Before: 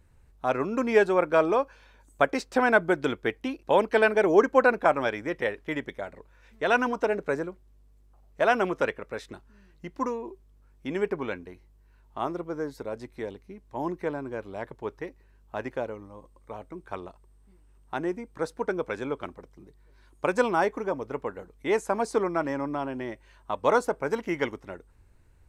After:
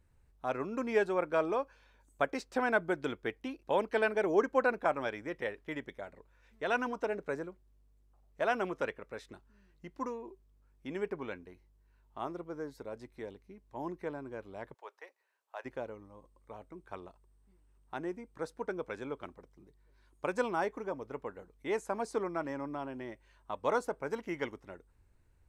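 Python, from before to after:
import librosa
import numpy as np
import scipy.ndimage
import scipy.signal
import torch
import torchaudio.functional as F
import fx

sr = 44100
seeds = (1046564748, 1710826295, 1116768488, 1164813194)

y = fx.highpass(x, sr, hz=580.0, slope=24, at=(14.73, 15.64), fade=0.02)
y = F.gain(torch.from_numpy(y), -8.5).numpy()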